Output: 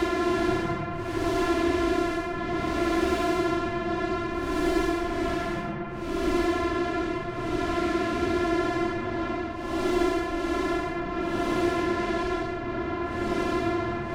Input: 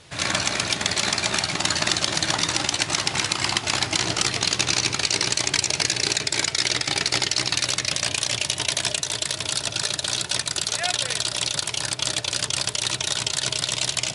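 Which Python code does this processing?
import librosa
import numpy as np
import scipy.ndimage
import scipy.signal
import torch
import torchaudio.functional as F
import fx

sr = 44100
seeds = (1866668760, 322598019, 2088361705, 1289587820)

y = np.r_[np.sort(x[:len(x) // 128 * 128].reshape(-1, 128), axis=1).ravel(), x[len(x) // 128 * 128:]]
y = scipy.signal.sosfilt(scipy.signal.butter(4, 1900.0, 'lowpass', fs=sr, output='sos'), y)
y = fx.tube_stage(y, sr, drive_db=29.0, bias=0.7)
y = fx.paulstretch(y, sr, seeds[0], factor=19.0, window_s=0.05, from_s=8.7)
y = y * 10.0 ** (8.0 / 20.0)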